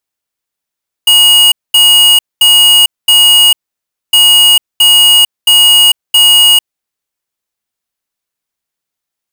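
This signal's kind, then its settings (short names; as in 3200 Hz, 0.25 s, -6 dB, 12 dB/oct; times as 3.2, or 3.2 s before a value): beep pattern square 2880 Hz, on 0.45 s, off 0.22 s, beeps 4, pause 0.60 s, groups 2, -5 dBFS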